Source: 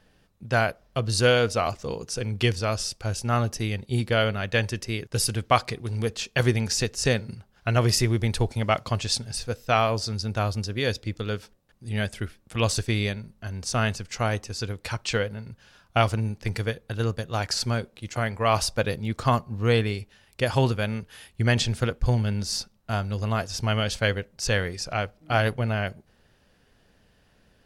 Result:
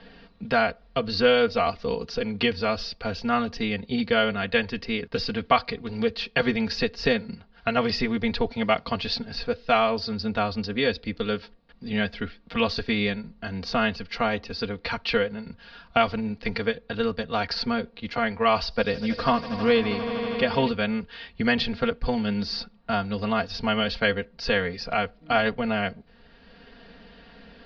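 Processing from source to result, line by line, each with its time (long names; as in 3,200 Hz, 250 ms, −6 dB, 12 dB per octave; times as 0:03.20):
0:18.61–0:20.69: echo that builds up and dies away 80 ms, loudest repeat 5, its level −18 dB
whole clip: elliptic low-pass filter 4,600 Hz, stop band 50 dB; comb filter 4.3 ms, depth 90%; multiband upward and downward compressor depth 40%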